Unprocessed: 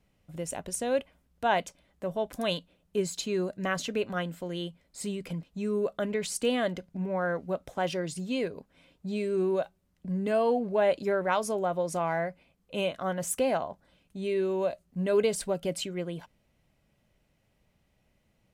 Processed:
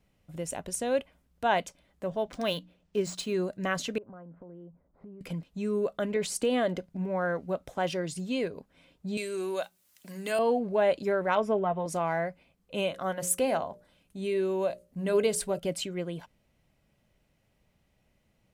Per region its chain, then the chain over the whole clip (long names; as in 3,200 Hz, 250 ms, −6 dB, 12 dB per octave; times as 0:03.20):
0:02.10–0:03.34: high-shelf EQ 10,000 Hz +4 dB + mains-hum notches 60/120/180/240/300 Hz + linearly interpolated sample-rate reduction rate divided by 3×
0:03.98–0:05.21: low-pass filter 1,200 Hz 24 dB per octave + downward compressor 8 to 1, threshold −44 dBFS
0:06.16–0:06.86: parametric band 470 Hz +5 dB 2.2 octaves + downward compressor 3 to 1, threshold −23 dBFS
0:09.17–0:10.39: spectral tilt +4 dB per octave + mains-hum notches 60/120/180/240 Hz + one half of a high-frequency compander encoder only
0:11.35–0:11.86: Savitzky-Golay smoothing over 25 samples + comb filter 4.6 ms, depth 64%
0:12.87–0:15.59: parametric band 11,000 Hz +5.5 dB 0.87 octaves + mains-hum notches 60/120/180/240/300/360/420/480/540/600 Hz
whole clip: no processing